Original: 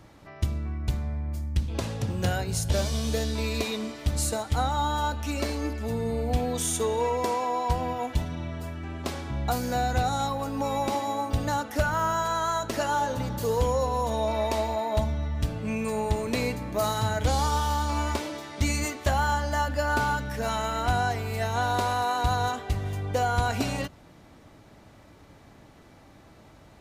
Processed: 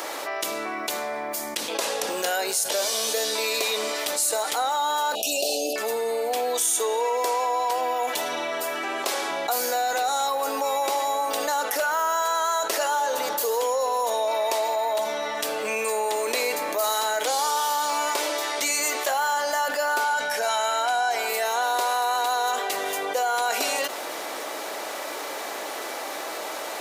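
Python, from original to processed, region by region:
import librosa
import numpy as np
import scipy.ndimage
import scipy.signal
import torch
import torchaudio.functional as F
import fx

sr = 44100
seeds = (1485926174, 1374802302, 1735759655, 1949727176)

y = fx.chain(x, sr, fx.brickwall_bandstop(low_hz=830.0, high_hz=2400.0),
    fx.comb(ms=1.4, depth=0.3),
    fx.env_flatten(amount_pct=70), at=(5.15, 5.76))
y = fx.chain(y, sr, fx.lowpass(hz=11000.0, slope=12),
    fx.comb(ms=1.3, depth=0.41), at=(20.04, 21.29))
y = scipy.signal.sosfilt(scipy.signal.butter(4, 430.0, 'highpass', fs=sr, output='sos'), y)
y = fx.high_shelf(y, sr, hz=7700.0, db=10.5)
y = fx.env_flatten(y, sr, amount_pct=70)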